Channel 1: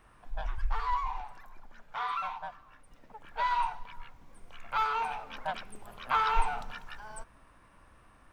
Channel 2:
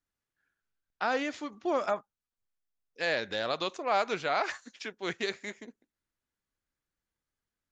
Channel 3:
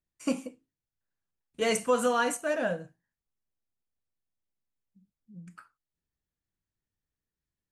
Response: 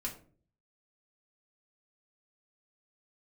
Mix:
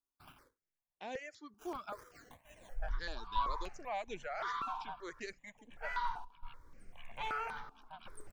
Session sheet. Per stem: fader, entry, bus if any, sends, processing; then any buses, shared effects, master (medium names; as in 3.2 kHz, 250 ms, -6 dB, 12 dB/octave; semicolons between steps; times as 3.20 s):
-2.5 dB, 2.45 s, no send, trance gate "xxx..xxx.xxxx" 83 bpm -12 dB
-10.0 dB, 0.00 s, no send, treble shelf 6.1 kHz +7 dB; reverb removal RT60 1.1 s
-8.0 dB, 0.00 s, no send, differentiator; compression 16:1, threshold -42 dBFS, peak gain reduction 15.5 dB; decimation with a swept rate 14×, swing 60% 2.3 Hz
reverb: none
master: stepped phaser 5.2 Hz 540–4800 Hz